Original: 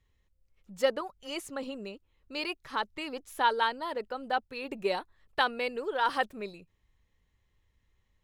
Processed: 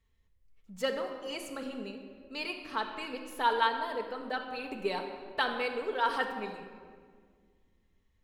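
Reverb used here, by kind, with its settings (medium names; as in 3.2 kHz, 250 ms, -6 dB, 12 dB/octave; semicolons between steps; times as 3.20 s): simulated room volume 2900 m³, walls mixed, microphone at 1.6 m; trim -3.5 dB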